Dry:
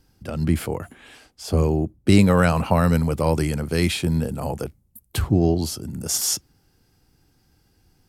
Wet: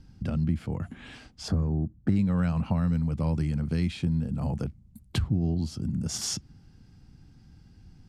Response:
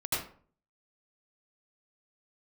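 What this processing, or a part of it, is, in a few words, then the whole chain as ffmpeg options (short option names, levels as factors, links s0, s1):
jukebox: -filter_complex "[0:a]lowpass=5900,lowshelf=f=290:t=q:w=1.5:g=9,acompressor=threshold=0.0355:ratio=3,asettb=1/sr,asplit=3[s0][s1][s2];[s0]atrim=end=1.484[s3];[s1]atrim=start=1.48:end=2.16,asetpts=PTS-STARTPTS,afade=t=in:d=0.004:c=qsin,afade=t=out:st=0.676:d=0.004:c=qsin,highshelf=f=2100:t=q:w=3:g=-7[s4];[s2]atrim=start=2.156[s5];[s3][s4]acrossfade=d=0.004:c1=hsin:c2=qsin[s6];[s6][s5]acrossfade=d=0.004:c1=qsin:c2=hsin"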